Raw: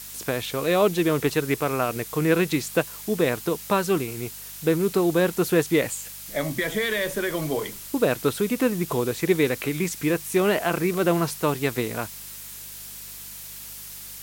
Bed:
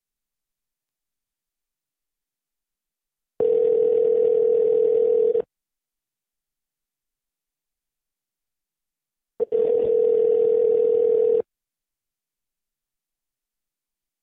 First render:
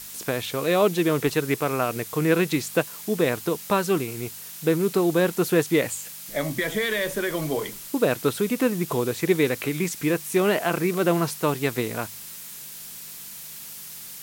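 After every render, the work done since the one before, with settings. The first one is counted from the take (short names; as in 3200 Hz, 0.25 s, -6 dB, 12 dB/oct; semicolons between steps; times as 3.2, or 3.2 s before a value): de-hum 50 Hz, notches 2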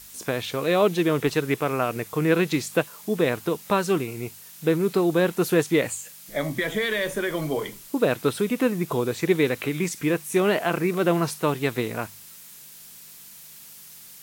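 noise print and reduce 6 dB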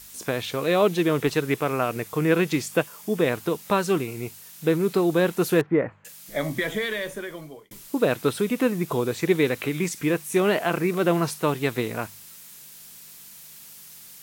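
2.22–3.3 notch 4000 Hz, Q 13; 5.61–6.05 LPF 1700 Hz 24 dB/oct; 6.6–7.71 fade out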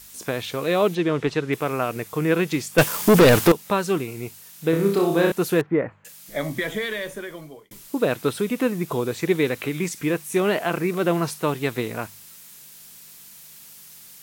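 0.95–1.53 air absorption 78 m; 2.78–3.52 sample leveller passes 5; 4.7–5.32 flutter echo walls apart 5.2 m, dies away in 0.51 s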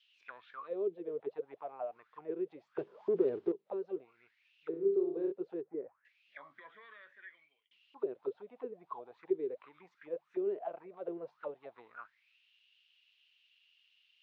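auto-wah 390–3200 Hz, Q 11, down, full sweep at -17 dBFS; ladder low-pass 4800 Hz, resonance 30%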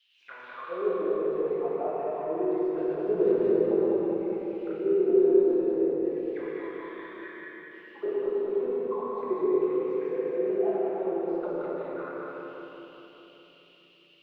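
regenerating reverse delay 0.102 s, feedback 74%, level -0.5 dB; shoebox room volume 200 m³, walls hard, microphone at 0.84 m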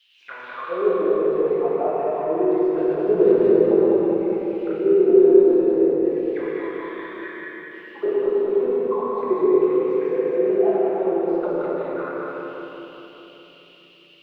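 gain +8 dB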